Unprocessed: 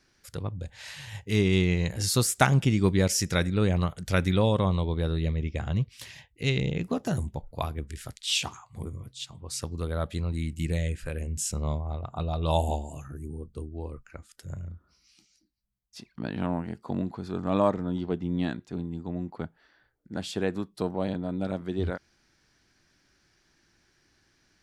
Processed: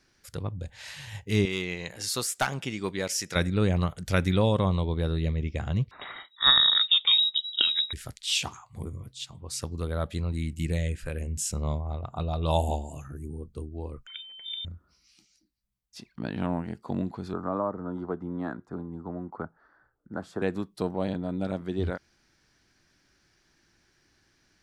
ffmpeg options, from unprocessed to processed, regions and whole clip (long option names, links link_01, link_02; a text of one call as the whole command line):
ffmpeg -i in.wav -filter_complex "[0:a]asettb=1/sr,asplit=3[link_01][link_02][link_03];[link_01]atrim=end=1.454[link_04];[link_02]atrim=start=1.45:end=3.36,asetpts=PTS-STARTPTS,afade=type=in:duration=0.004:curve=qsin,afade=type=out:start_time=1.906:duration=0.004:curve=qsin,highpass=frequency=690:poles=1,highshelf=frequency=5300:gain=-4.5,volume=18dB,asoftclip=hard,volume=-18dB[link_05];[link_03]atrim=start=3.356[link_06];[link_04][link_05]acrossfade=duration=0.004:curve1=hsin:curve2=qsin[link_07];[link_07][link_06]acrossfade=duration=0.004:curve1=qsin:curve2=hsin,asettb=1/sr,asplit=3[link_08][link_09][link_10];[link_08]atrim=end=5.914[link_11];[link_09]atrim=start=5.91:end=7.93,asetpts=PTS-STARTPTS,afade=type=in:duration=0.004:curve=qsin,afade=type=out:start_time=2.016:duration=0.004:curve=qsin,acontrast=72,lowpass=frequency=3300:width_type=q:width=0.5098,lowpass=frequency=3300:width_type=q:width=0.6013,lowpass=frequency=3300:width_type=q:width=0.9,lowpass=frequency=3300:width_type=q:width=2.563,afreqshift=-3900[link_12];[link_10]atrim=start=7.926[link_13];[link_11][link_12]acrossfade=duration=0.004:curve1=hsin:curve2=qsin[link_14];[link_14][link_13]acrossfade=duration=0.004:curve1=qsin:curve2=hsin,asettb=1/sr,asplit=3[link_15][link_16][link_17];[link_15]atrim=end=14.074[link_18];[link_16]atrim=start=14.07:end=14.65,asetpts=PTS-STARTPTS,afade=type=in:duration=0.004:curve=qsin,afade=type=out:start_time=0.576:duration=0.004:curve=qsin,bandreject=frequency=2500:width=12,aeval=exprs='val(0)+0.00708*sin(2*PI*610*n/s)':channel_layout=same,lowpass=frequency=3100:width_type=q:width=0.5098,lowpass=frequency=3100:width_type=q:width=0.6013,lowpass=frequency=3100:width_type=q:width=0.9,lowpass=frequency=3100:width_type=q:width=2.563,afreqshift=-3700[link_19];[link_17]atrim=start=14.646[link_20];[link_18][link_19]acrossfade=duration=0.004:curve1=hsin:curve2=qsin[link_21];[link_21][link_20]acrossfade=duration=0.004:curve1=qsin:curve2=hsin,asettb=1/sr,asplit=3[link_22][link_23][link_24];[link_22]atrim=end=17.334[link_25];[link_23]atrim=start=17.33:end=20.42,asetpts=PTS-STARTPTS,afade=type=in:duration=0.004:curve=qsin,afade=type=out:start_time=3.086:duration=0.004:curve=qsin,highshelf=frequency=1900:width_type=q:width=3:gain=-13,acrossover=split=270|700[link_26][link_27][link_28];[link_26]acompressor=threshold=-39dB:ratio=4[link_29];[link_27]acompressor=threshold=-30dB:ratio=4[link_30];[link_28]acompressor=threshold=-35dB:ratio=4[link_31];[link_29][link_30][link_31]amix=inputs=3:normalize=0[link_32];[link_24]atrim=start=20.416[link_33];[link_25][link_32]acrossfade=duration=0.004:curve1=hsin:curve2=qsin[link_34];[link_34][link_33]acrossfade=duration=0.004:curve1=qsin:curve2=hsin" out.wav